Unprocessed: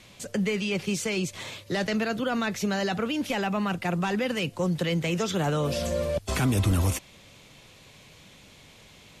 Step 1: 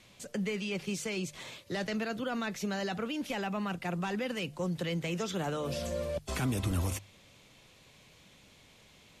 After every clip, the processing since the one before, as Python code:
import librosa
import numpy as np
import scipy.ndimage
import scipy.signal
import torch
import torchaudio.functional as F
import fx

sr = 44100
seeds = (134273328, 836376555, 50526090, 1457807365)

y = fx.hum_notches(x, sr, base_hz=50, count=3)
y = y * 10.0 ** (-7.0 / 20.0)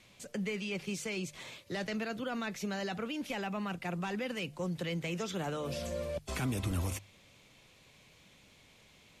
y = fx.peak_eq(x, sr, hz=2300.0, db=2.5, octaves=0.37)
y = y * 10.0 ** (-2.5 / 20.0)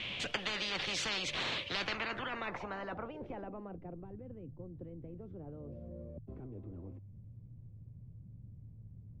y = fx.filter_sweep_lowpass(x, sr, from_hz=3000.0, to_hz=110.0, start_s=1.68, end_s=4.15, q=7.7)
y = fx.spectral_comp(y, sr, ratio=10.0)
y = y * 10.0 ** (-4.5 / 20.0)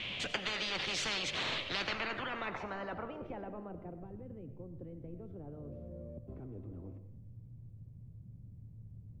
y = fx.rev_freeverb(x, sr, rt60_s=0.85, hf_ratio=0.6, predelay_ms=50, drr_db=10.0)